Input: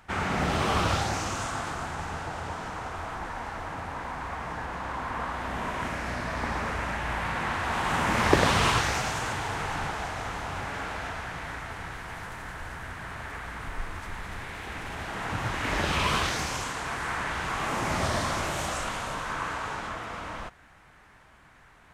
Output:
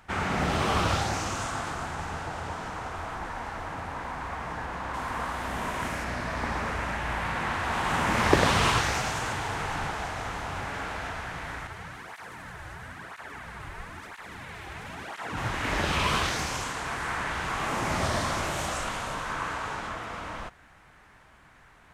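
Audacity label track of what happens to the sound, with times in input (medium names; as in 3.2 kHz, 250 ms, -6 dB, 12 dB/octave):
4.930000	6.030000	treble shelf 5.2 kHz -> 7.9 kHz +10 dB
11.670000	15.370000	cancelling through-zero flanger nulls at 1 Hz, depth 4.6 ms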